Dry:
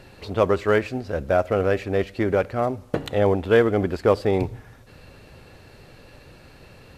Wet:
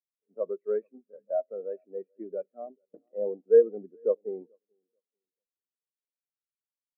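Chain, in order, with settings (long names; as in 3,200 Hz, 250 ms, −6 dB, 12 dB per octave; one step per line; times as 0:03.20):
elliptic band-pass filter 190–2,600 Hz
repeating echo 437 ms, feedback 43%, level −16 dB
every bin expanded away from the loudest bin 2.5 to 1
level −4 dB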